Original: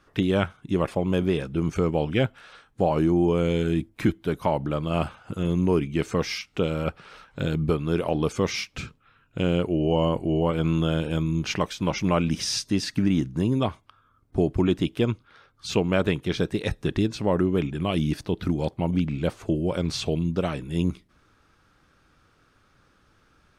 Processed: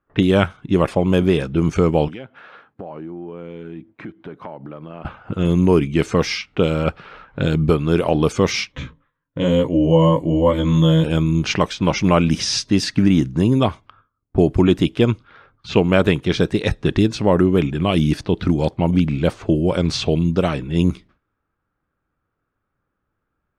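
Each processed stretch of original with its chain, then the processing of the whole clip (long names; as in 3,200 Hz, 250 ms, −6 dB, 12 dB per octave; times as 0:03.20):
0:02.08–0:05.05: high-pass filter 170 Hz + downward compressor 4 to 1, threshold −40 dBFS
0:08.72–0:11.04: EQ curve with evenly spaced ripples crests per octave 1.1, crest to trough 12 dB + chorus effect 1.1 Hz, delay 15.5 ms, depth 3.2 ms
whole clip: low-pass that shuts in the quiet parts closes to 1,600 Hz, open at −19.5 dBFS; noise gate with hold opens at −49 dBFS; level +7.5 dB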